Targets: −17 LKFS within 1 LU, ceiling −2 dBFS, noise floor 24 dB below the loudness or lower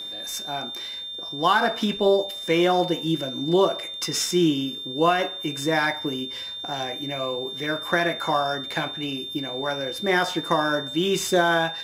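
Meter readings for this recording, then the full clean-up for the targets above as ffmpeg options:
interfering tone 3,600 Hz; level of the tone −32 dBFS; integrated loudness −24.0 LKFS; sample peak −6.5 dBFS; target loudness −17.0 LKFS
→ -af "bandreject=frequency=3600:width=30"
-af "volume=7dB,alimiter=limit=-2dB:level=0:latency=1"

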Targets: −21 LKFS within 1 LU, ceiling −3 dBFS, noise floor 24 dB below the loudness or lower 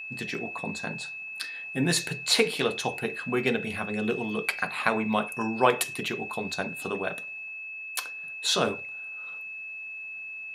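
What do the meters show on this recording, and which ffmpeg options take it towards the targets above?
interfering tone 2,600 Hz; level of the tone −36 dBFS; integrated loudness −29.0 LKFS; sample peak −6.0 dBFS; target loudness −21.0 LKFS
→ -af "bandreject=frequency=2600:width=30"
-af "volume=8dB,alimiter=limit=-3dB:level=0:latency=1"

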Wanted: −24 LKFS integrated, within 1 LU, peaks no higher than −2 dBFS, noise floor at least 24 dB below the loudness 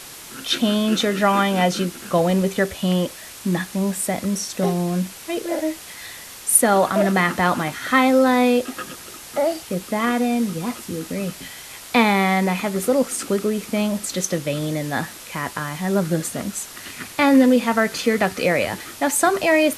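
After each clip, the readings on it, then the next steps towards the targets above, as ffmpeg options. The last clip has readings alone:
background noise floor −39 dBFS; target noise floor −45 dBFS; integrated loudness −20.5 LKFS; sample peak −2.5 dBFS; target loudness −24.0 LKFS
→ -af "afftdn=noise_reduction=6:noise_floor=-39"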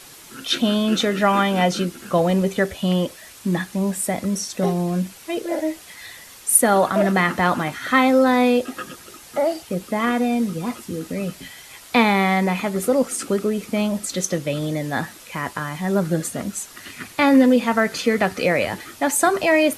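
background noise floor −44 dBFS; target noise floor −45 dBFS
→ -af "afftdn=noise_reduction=6:noise_floor=-44"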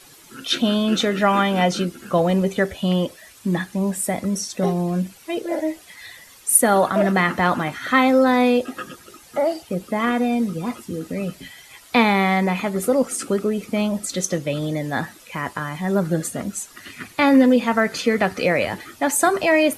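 background noise floor −47 dBFS; integrated loudness −20.5 LKFS; sample peak −3.0 dBFS; target loudness −24.0 LKFS
→ -af "volume=-3.5dB"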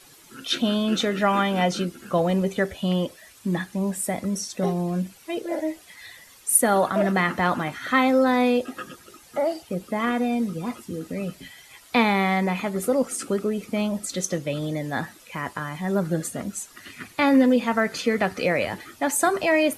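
integrated loudness −24.0 LKFS; sample peak −6.5 dBFS; background noise floor −51 dBFS

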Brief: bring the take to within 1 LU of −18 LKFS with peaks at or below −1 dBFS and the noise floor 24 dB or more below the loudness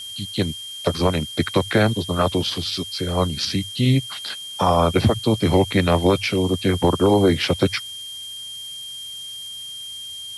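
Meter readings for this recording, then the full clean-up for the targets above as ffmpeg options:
interfering tone 3,200 Hz; level of the tone −32 dBFS; background noise floor −34 dBFS; target noise floor −46 dBFS; integrated loudness −21.5 LKFS; sample peak −6.0 dBFS; target loudness −18.0 LKFS
→ -af "bandreject=frequency=3200:width=30"
-af "afftdn=noise_reduction=12:noise_floor=-34"
-af "volume=3.5dB"

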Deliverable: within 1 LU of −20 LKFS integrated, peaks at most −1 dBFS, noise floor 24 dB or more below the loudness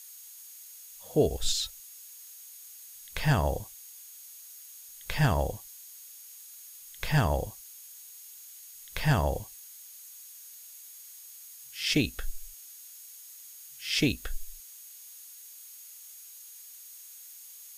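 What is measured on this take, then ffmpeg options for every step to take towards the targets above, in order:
interfering tone 6,600 Hz; level of the tone −54 dBFS; background noise floor −49 dBFS; target noise floor −54 dBFS; integrated loudness −30.0 LKFS; sample peak −12.5 dBFS; target loudness −20.0 LKFS
→ -af "bandreject=frequency=6600:width=30"
-af "afftdn=noise_reduction=6:noise_floor=-49"
-af "volume=10dB"

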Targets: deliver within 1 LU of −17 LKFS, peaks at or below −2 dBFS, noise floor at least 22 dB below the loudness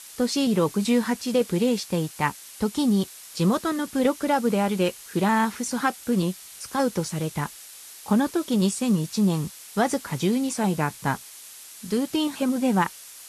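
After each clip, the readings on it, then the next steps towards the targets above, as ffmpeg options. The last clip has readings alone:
background noise floor −44 dBFS; target noise floor −47 dBFS; integrated loudness −25.0 LKFS; sample peak −9.0 dBFS; target loudness −17.0 LKFS
→ -af "afftdn=noise_reduction=6:noise_floor=-44"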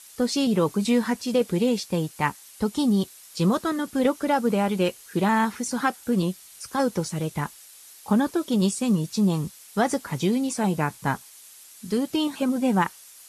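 background noise floor −48 dBFS; integrated loudness −25.0 LKFS; sample peak −9.0 dBFS; target loudness −17.0 LKFS
→ -af "volume=8dB,alimiter=limit=-2dB:level=0:latency=1"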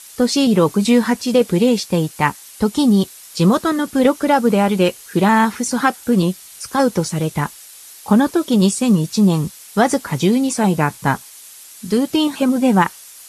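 integrated loudness −17.0 LKFS; sample peak −2.0 dBFS; background noise floor −40 dBFS

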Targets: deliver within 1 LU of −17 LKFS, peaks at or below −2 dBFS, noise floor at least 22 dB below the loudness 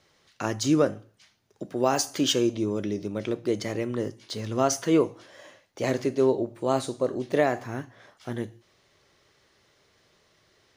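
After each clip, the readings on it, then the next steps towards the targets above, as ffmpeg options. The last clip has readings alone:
integrated loudness −27.0 LKFS; sample peak −9.0 dBFS; target loudness −17.0 LKFS
→ -af "volume=10dB,alimiter=limit=-2dB:level=0:latency=1"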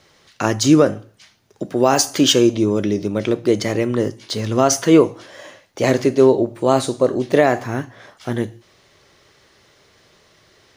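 integrated loudness −17.5 LKFS; sample peak −2.0 dBFS; background noise floor −56 dBFS

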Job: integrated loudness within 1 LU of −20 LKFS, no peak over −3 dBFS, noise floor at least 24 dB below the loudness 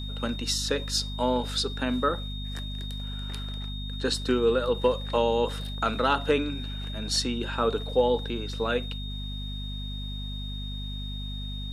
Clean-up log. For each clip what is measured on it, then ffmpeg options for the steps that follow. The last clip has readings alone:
mains hum 50 Hz; hum harmonics up to 250 Hz; level of the hum −32 dBFS; interfering tone 3,700 Hz; level of the tone −39 dBFS; integrated loudness −28.5 LKFS; sample peak −11.0 dBFS; target loudness −20.0 LKFS
→ -af "bandreject=frequency=50:width_type=h:width=6,bandreject=frequency=100:width_type=h:width=6,bandreject=frequency=150:width_type=h:width=6,bandreject=frequency=200:width_type=h:width=6,bandreject=frequency=250:width_type=h:width=6"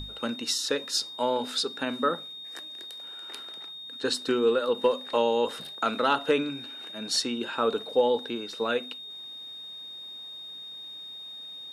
mains hum none found; interfering tone 3,700 Hz; level of the tone −39 dBFS
→ -af "bandreject=frequency=3700:width=30"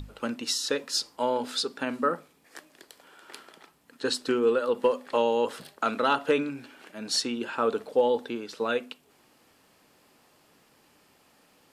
interfering tone none found; integrated loudness −28.0 LKFS; sample peak −12.0 dBFS; target loudness −20.0 LKFS
→ -af "volume=8dB"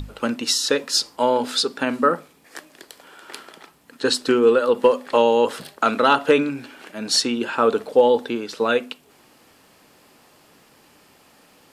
integrated loudness −20.0 LKFS; sample peak −4.0 dBFS; background noise floor −55 dBFS

